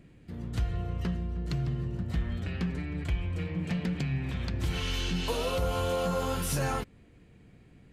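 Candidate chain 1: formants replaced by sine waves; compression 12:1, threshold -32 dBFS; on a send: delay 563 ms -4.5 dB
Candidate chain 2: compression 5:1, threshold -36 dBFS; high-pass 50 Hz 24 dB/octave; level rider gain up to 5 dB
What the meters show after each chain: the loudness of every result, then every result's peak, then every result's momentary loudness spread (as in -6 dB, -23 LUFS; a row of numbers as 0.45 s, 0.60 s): -36.5 LUFS, -35.0 LUFS; -24.0 dBFS, -20.0 dBFS; 7 LU, 13 LU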